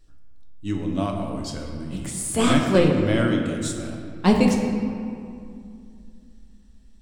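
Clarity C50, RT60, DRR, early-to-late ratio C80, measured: 3.5 dB, 2.4 s, 1.0 dB, 4.5 dB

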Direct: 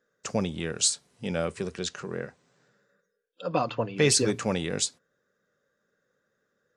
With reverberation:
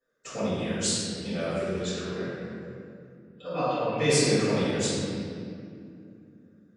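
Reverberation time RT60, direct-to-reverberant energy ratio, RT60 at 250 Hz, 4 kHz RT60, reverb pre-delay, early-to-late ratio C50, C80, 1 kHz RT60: 2.5 s, -14.5 dB, 4.0 s, 1.5 s, 3 ms, -4.0 dB, -1.5 dB, 2.2 s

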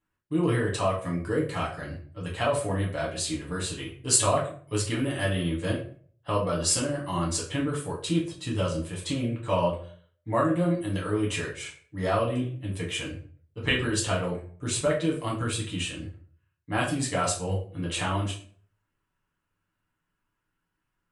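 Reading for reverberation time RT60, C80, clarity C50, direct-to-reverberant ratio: 0.45 s, 12.0 dB, 7.5 dB, -4.5 dB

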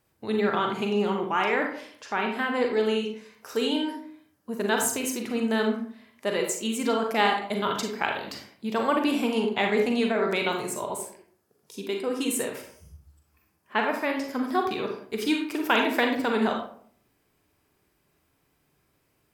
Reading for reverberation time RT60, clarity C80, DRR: 0.55 s, 8.5 dB, 2.0 dB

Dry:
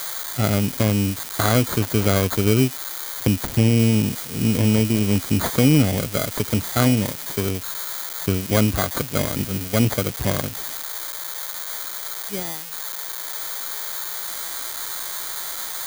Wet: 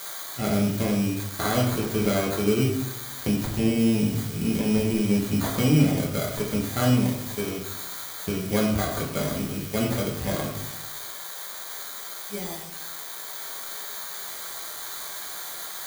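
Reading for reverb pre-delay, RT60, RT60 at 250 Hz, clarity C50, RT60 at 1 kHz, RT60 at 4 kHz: 5 ms, 0.85 s, 1.0 s, 5.0 dB, 0.80 s, 0.55 s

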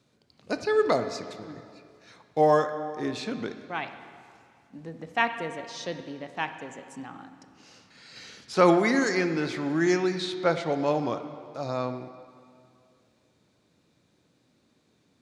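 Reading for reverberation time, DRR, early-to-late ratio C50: 2.3 s, 8.5 dB, 9.5 dB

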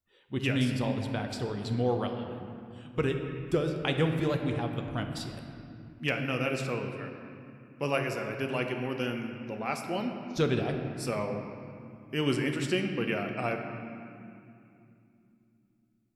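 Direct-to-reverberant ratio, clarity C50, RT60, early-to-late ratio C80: 3.5 dB, 5.0 dB, 2.7 s, 6.0 dB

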